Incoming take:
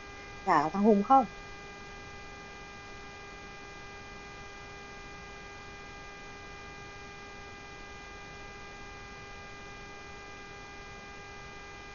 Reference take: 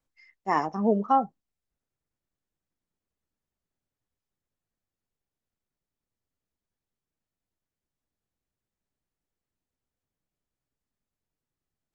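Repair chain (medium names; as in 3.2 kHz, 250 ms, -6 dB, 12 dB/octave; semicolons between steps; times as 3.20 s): de-hum 402.4 Hz, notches 6; noise print and reduce 30 dB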